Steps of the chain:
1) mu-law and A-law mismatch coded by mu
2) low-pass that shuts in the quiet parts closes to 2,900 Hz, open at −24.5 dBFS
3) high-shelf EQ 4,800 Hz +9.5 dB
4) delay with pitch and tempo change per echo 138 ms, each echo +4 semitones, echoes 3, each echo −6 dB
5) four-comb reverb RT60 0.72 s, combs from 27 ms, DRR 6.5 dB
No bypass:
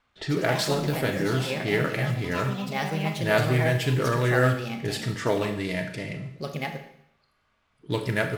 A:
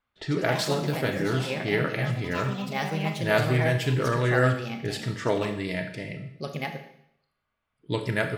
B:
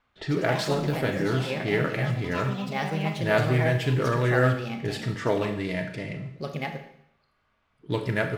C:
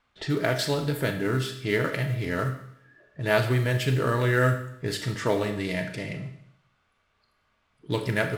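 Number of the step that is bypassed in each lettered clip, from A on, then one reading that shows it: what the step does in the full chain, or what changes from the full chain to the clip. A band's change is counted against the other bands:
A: 1, distortion level −24 dB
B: 3, 8 kHz band −6.0 dB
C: 4, change in momentary loudness spread −1 LU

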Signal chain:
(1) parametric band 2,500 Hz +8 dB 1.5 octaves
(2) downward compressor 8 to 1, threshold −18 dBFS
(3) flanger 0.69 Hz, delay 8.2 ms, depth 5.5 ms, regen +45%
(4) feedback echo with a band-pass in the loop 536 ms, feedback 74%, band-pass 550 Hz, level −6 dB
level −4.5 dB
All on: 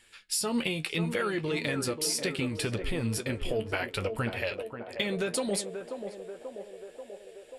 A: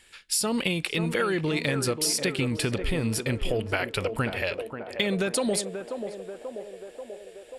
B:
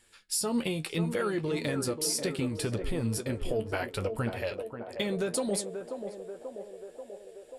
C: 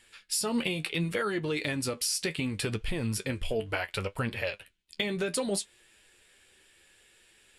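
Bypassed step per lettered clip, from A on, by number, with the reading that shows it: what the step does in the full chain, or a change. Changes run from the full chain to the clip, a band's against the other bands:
3, change in integrated loudness +4.0 LU
1, 2 kHz band −5.0 dB
4, echo-to-direct ratio −8.0 dB to none audible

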